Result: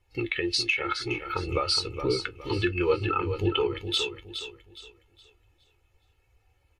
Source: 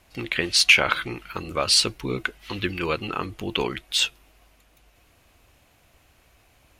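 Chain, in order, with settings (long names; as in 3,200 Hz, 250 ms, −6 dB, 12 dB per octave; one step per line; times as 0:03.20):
comb filter 2.3 ms, depth 67%
downward compressor 10 to 1, threshold −26 dBFS, peak gain reduction 17.5 dB
flanger 0.95 Hz, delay 9.7 ms, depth 1.9 ms, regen +63%
on a send: repeating echo 416 ms, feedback 45%, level −6 dB
on the sum: every bin expanded away from the loudest bin 1.5 to 1
level +2.5 dB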